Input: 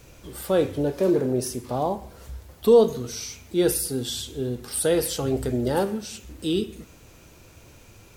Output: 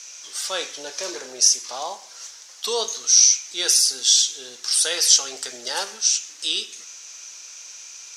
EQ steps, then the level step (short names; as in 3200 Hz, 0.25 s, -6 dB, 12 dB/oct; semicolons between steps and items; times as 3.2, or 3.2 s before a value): HPF 1200 Hz 12 dB/oct; synth low-pass 6000 Hz, resonance Q 4.6; high shelf 3200 Hz +8 dB; +4.0 dB